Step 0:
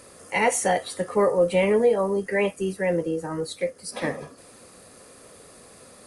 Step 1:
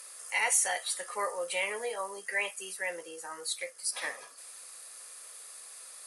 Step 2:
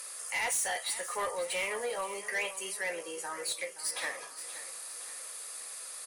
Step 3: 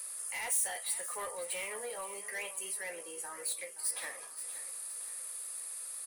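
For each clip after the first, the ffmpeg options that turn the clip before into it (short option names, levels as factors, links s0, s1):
-filter_complex "[0:a]highpass=1100,aemphasis=mode=production:type=cd,asplit=2[s0][s1];[s1]alimiter=limit=0.126:level=0:latency=1:release=228,volume=1.12[s2];[s0][s2]amix=inputs=2:normalize=0,volume=0.355"
-filter_complex "[0:a]asplit=2[s0][s1];[s1]acompressor=threshold=0.00891:ratio=6,volume=0.75[s2];[s0][s2]amix=inputs=2:normalize=0,asoftclip=type=tanh:threshold=0.0422,aecho=1:1:522|1044|1566|2088|2610:0.2|0.0998|0.0499|0.0249|0.0125"
-af "aexciter=amount=2.7:drive=6.7:freq=8500,volume=0.447"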